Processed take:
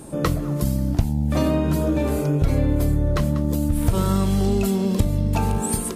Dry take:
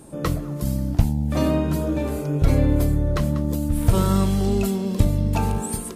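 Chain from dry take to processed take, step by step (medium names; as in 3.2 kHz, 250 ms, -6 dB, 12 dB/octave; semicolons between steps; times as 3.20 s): compression 3:1, threshold -23 dBFS, peak gain reduction 10 dB; trim +5.5 dB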